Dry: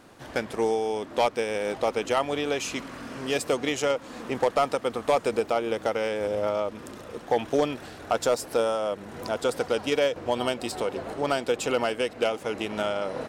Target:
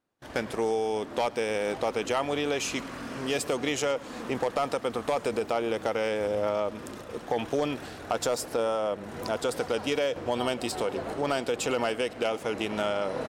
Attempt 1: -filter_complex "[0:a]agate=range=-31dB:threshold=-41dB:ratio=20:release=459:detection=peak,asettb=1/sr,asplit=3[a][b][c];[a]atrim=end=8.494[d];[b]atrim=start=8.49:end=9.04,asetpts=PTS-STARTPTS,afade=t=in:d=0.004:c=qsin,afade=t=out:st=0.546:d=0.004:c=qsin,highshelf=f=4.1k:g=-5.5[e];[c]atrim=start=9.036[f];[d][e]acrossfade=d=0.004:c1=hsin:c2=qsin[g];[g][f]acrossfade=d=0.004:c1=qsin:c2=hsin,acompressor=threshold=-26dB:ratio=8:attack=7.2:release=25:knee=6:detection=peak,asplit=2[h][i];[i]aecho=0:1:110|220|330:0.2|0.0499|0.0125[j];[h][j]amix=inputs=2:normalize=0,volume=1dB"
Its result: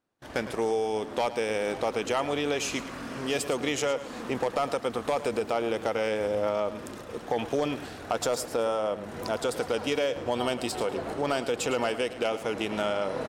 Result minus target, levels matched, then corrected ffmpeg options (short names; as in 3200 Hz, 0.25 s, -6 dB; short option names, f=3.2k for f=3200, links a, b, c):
echo-to-direct +9 dB
-filter_complex "[0:a]agate=range=-31dB:threshold=-41dB:ratio=20:release=459:detection=peak,asettb=1/sr,asplit=3[a][b][c];[a]atrim=end=8.494[d];[b]atrim=start=8.49:end=9.04,asetpts=PTS-STARTPTS,afade=t=in:d=0.004:c=qsin,afade=t=out:st=0.546:d=0.004:c=qsin,highshelf=f=4.1k:g=-5.5[e];[c]atrim=start=9.036[f];[d][e]acrossfade=d=0.004:c1=hsin:c2=qsin[g];[g][f]acrossfade=d=0.004:c1=qsin:c2=hsin,acompressor=threshold=-26dB:ratio=8:attack=7.2:release=25:knee=6:detection=peak,asplit=2[h][i];[i]aecho=0:1:110|220:0.0708|0.0177[j];[h][j]amix=inputs=2:normalize=0,volume=1dB"